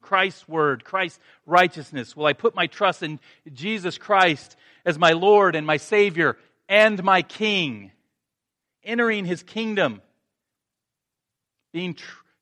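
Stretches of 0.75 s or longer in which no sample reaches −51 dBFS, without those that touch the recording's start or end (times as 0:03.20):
0:07.91–0:08.83
0:10.04–0:11.74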